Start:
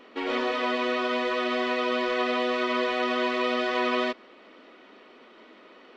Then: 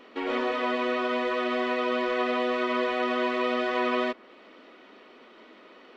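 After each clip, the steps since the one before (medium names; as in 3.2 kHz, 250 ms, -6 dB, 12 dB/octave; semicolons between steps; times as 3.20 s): dynamic bell 5 kHz, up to -6 dB, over -49 dBFS, Q 0.76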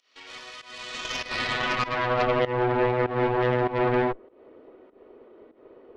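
band-pass sweep 5.8 kHz -> 420 Hz, 0.70–2.53 s; Chebyshev shaper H 6 -10 dB, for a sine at -21 dBFS; volume shaper 98 bpm, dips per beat 1, -17 dB, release 183 ms; trim +7 dB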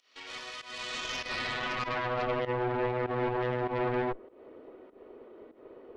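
peak limiter -22.5 dBFS, peak gain reduction 10 dB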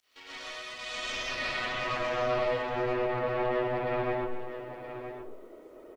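bit crusher 12-bit; delay 971 ms -11 dB; algorithmic reverb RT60 0.43 s, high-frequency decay 0.4×, pre-delay 80 ms, DRR -4.5 dB; trim -4.5 dB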